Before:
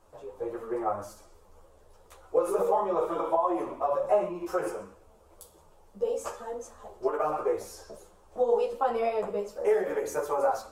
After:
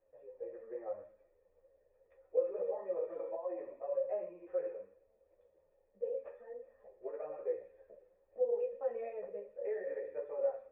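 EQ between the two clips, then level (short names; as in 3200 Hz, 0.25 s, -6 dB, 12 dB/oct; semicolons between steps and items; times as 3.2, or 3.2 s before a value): vocal tract filter e; -3.5 dB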